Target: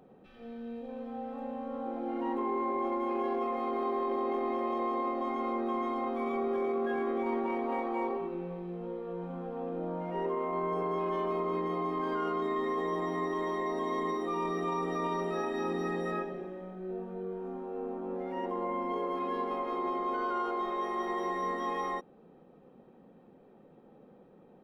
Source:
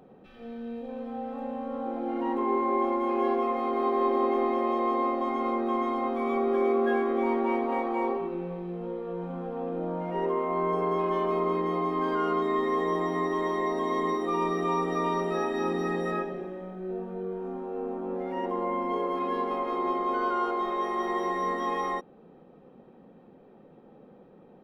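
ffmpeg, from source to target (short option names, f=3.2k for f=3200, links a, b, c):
-af "alimiter=limit=-20.5dB:level=0:latency=1:release=10,volume=-4dB"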